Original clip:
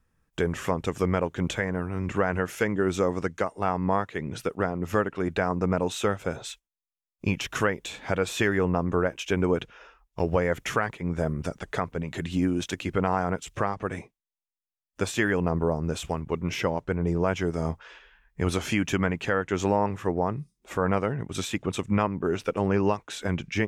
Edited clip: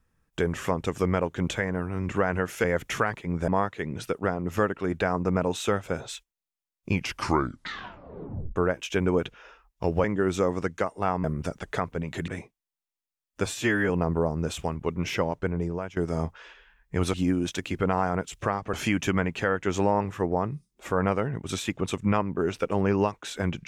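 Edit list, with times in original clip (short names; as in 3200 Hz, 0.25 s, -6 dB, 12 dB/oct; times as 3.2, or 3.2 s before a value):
2.64–3.84 swap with 10.4–11.24
7.28 tape stop 1.64 s
12.28–13.88 move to 18.59
15.06–15.35 stretch 1.5×
16.9–17.42 fade out, to -17 dB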